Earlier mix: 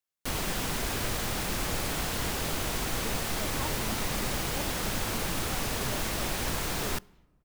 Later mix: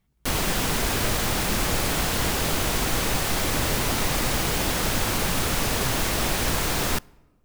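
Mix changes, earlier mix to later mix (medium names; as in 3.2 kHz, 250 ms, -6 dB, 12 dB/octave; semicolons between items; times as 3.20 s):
speech: entry -2.35 s; background +7.0 dB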